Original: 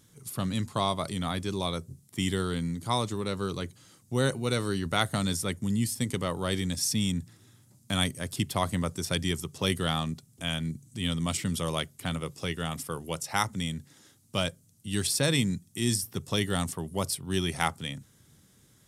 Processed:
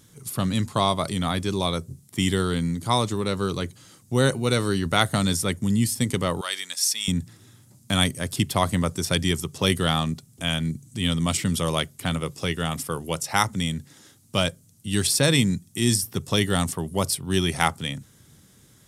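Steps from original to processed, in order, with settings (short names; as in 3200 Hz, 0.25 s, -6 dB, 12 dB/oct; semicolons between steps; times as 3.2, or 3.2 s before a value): 6.41–7.08 HPF 1200 Hz 12 dB/oct; gain +6 dB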